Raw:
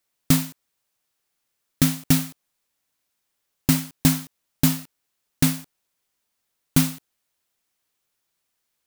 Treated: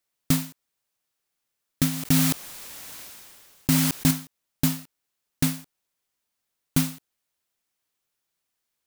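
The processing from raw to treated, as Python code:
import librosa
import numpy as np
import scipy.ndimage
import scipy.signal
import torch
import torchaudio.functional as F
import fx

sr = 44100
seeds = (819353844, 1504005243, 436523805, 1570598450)

y = fx.sustainer(x, sr, db_per_s=27.0, at=(1.89, 4.11))
y = y * 10.0 ** (-4.0 / 20.0)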